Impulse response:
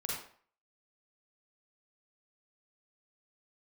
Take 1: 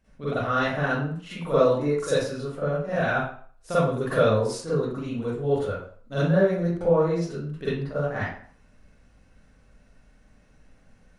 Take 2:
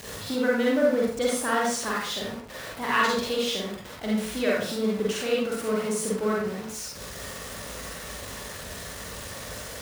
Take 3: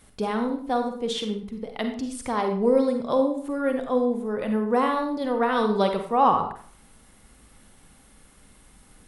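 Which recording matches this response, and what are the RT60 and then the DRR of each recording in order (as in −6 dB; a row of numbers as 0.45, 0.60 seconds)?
2; 0.50, 0.50, 0.50 seconds; −12.5, −4.5, 5.0 decibels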